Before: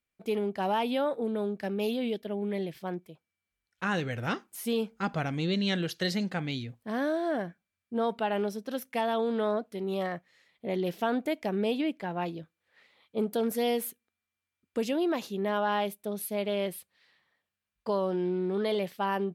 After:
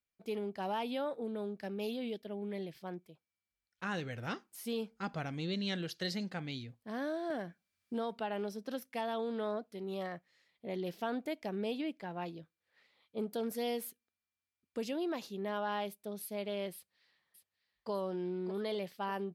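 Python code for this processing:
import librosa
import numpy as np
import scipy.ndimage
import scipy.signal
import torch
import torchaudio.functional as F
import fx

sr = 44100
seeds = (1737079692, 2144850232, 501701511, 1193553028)

y = fx.band_squash(x, sr, depth_pct=70, at=(7.3, 8.82))
y = fx.echo_throw(y, sr, start_s=16.74, length_s=1.17, ms=600, feedback_pct=55, wet_db=-10.5)
y = fx.peak_eq(y, sr, hz=4800.0, db=4.5, octaves=0.53)
y = y * librosa.db_to_amplitude(-8.0)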